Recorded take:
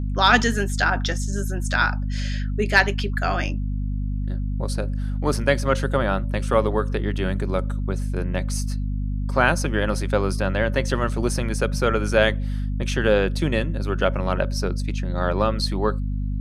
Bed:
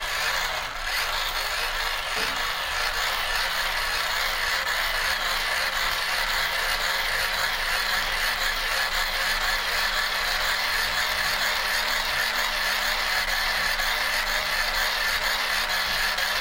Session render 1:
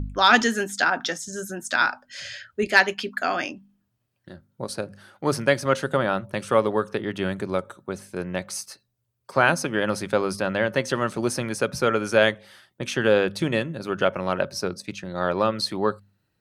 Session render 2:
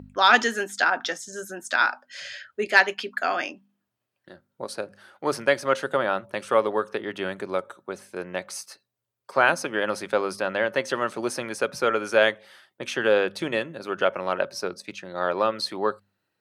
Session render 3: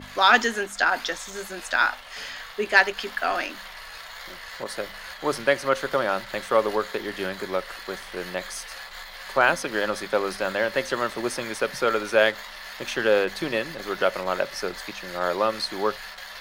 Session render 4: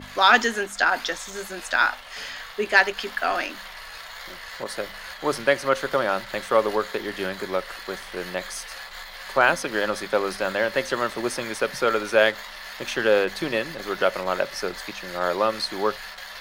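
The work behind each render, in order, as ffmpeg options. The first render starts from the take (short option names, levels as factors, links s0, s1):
-af "bandreject=f=50:t=h:w=4,bandreject=f=100:t=h:w=4,bandreject=f=150:t=h:w=4,bandreject=f=200:t=h:w=4,bandreject=f=250:t=h:w=4"
-af "highpass=78,bass=f=250:g=-13,treble=f=4000:g=-4"
-filter_complex "[1:a]volume=0.188[s0];[0:a][s0]amix=inputs=2:normalize=0"
-af "volume=1.12,alimiter=limit=0.708:level=0:latency=1"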